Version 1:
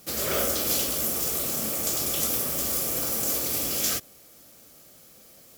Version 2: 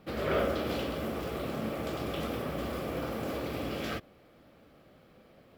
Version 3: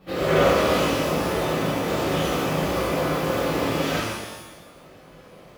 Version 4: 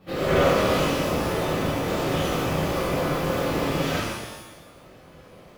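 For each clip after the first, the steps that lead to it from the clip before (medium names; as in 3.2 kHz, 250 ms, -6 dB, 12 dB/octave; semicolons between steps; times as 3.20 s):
distance through air 460 m; trim +2 dB
pitch-shifted reverb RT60 1.1 s, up +12 st, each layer -8 dB, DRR -10.5 dB
octave divider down 1 oct, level -4 dB; trim -1.5 dB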